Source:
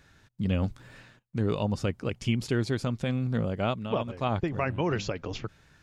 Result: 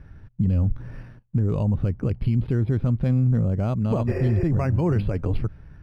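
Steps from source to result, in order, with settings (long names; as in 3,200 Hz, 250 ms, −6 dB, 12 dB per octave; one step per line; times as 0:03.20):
healed spectral selection 0:04.10–0:04.42, 360–2,900 Hz after
bad sample-rate conversion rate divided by 6×, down filtered, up hold
RIAA equalisation playback
brickwall limiter −17 dBFS, peak gain reduction 11 dB
high-shelf EQ 4,100 Hz −8 dB
level +3.5 dB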